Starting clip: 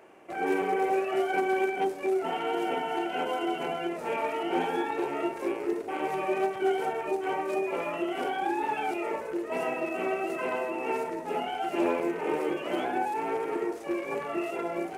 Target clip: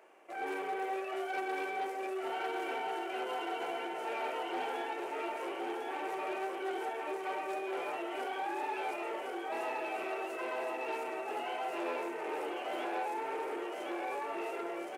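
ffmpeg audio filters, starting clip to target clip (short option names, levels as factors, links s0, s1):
-filter_complex "[0:a]asplit=2[s0][s1];[s1]aecho=0:1:1066|2132|3198|4264|5330:0.631|0.265|0.111|0.0467|0.0196[s2];[s0][s2]amix=inputs=2:normalize=0,asoftclip=type=tanh:threshold=0.0668,highpass=430,volume=0.562"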